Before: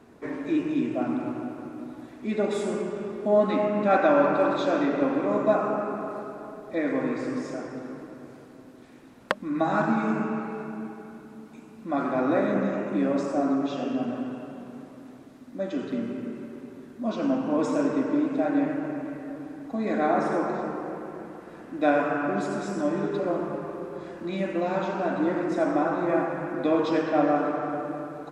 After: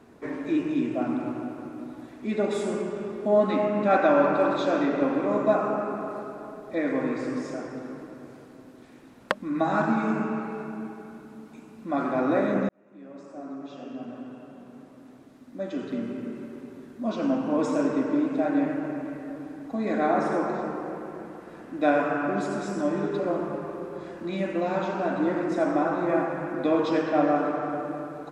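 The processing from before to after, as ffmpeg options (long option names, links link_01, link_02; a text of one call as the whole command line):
ffmpeg -i in.wav -filter_complex "[0:a]asplit=2[link_01][link_02];[link_01]atrim=end=12.69,asetpts=PTS-STARTPTS,afade=type=out:start_time=12.686:duration=0.004:curve=hsin[link_03];[link_02]atrim=start=12.69,asetpts=PTS-STARTPTS,afade=type=in:duration=3.73[link_04];[link_03][link_04]concat=n=2:v=0:a=1" out.wav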